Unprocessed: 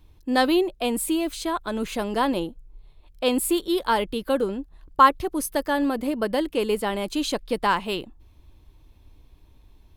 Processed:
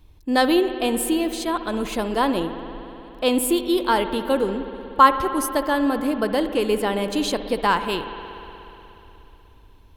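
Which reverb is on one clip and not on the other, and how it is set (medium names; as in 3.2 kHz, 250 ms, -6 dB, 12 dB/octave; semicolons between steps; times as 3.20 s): spring tank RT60 3.4 s, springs 60 ms, chirp 30 ms, DRR 9 dB; trim +2 dB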